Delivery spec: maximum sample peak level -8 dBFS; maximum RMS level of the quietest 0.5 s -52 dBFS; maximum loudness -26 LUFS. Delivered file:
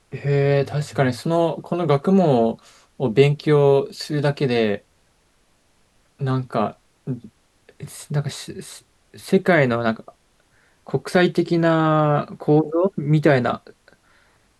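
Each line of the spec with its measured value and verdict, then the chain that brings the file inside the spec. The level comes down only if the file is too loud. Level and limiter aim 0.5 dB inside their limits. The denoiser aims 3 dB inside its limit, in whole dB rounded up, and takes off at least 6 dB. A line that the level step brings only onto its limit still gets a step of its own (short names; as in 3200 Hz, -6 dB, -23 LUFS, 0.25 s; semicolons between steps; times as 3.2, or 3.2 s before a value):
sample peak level -2.5 dBFS: fail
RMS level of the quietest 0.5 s -61 dBFS: OK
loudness -20.0 LUFS: fail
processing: gain -6.5 dB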